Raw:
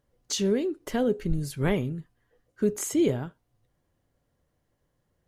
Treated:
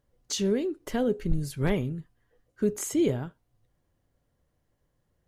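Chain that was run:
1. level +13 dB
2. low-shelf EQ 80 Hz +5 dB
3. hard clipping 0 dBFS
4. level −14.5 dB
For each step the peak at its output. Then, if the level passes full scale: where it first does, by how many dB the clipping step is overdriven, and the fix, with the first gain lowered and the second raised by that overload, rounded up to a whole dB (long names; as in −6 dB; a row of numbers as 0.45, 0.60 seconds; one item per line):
+1.5, +3.0, 0.0, −14.5 dBFS
step 1, 3.0 dB
step 1 +10 dB, step 4 −11.5 dB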